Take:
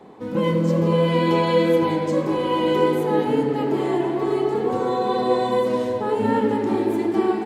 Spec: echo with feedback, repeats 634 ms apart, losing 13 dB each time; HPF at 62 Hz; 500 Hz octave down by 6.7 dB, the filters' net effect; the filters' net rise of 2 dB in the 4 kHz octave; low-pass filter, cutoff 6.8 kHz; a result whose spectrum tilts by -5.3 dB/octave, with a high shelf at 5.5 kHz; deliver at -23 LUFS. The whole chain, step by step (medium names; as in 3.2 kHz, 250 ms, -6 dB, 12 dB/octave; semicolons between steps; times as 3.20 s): high-pass 62 Hz; low-pass 6.8 kHz; peaking EQ 500 Hz -8 dB; peaking EQ 4 kHz +4.5 dB; treble shelf 5.5 kHz -3.5 dB; feedback delay 634 ms, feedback 22%, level -13 dB; trim +1 dB